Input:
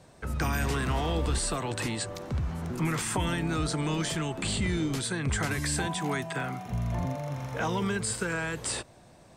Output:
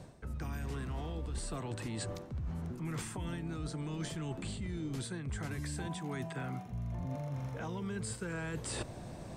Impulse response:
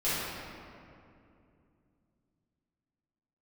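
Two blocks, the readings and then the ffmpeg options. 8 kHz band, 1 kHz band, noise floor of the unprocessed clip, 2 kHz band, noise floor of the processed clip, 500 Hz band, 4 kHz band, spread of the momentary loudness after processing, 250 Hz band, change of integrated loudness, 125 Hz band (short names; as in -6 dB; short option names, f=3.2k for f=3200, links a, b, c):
-12.0 dB, -12.5 dB, -55 dBFS, -13.0 dB, -47 dBFS, -9.5 dB, -13.0 dB, 2 LU, -8.5 dB, -9.5 dB, -7.0 dB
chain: -af "lowshelf=f=460:g=8.5,areverse,acompressor=threshold=-40dB:ratio=10,areverse,volume=3.5dB"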